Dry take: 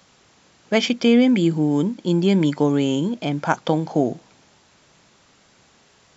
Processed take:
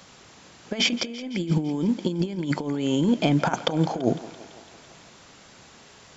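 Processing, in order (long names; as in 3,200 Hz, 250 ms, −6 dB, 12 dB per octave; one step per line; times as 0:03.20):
compressor whose output falls as the input rises −23 dBFS, ratio −0.5
feedback echo with a high-pass in the loop 168 ms, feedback 71%, high-pass 270 Hz, level −16.5 dB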